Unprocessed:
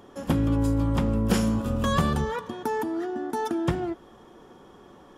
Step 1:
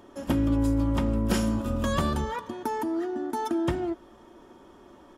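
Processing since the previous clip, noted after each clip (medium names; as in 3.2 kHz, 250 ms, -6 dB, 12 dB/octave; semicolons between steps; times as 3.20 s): comb 3.2 ms, depth 43%; trim -2 dB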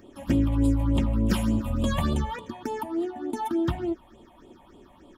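phase shifter stages 6, 3.4 Hz, lowest notch 350–1700 Hz; trim +2.5 dB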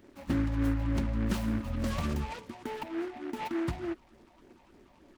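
delay time shaken by noise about 1.3 kHz, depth 0.088 ms; trim -6.5 dB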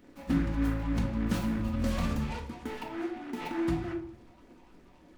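simulated room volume 560 m³, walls furnished, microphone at 1.9 m; trim -1.5 dB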